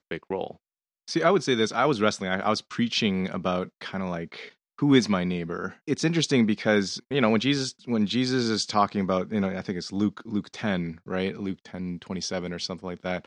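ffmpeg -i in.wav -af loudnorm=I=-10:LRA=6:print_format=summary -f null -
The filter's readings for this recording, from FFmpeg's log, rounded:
Input Integrated:    -27.0 LUFS
Input True Peak:      -6.0 dBTP
Input LRA:             6.3 LU
Input Threshold:     -37.1 LUFS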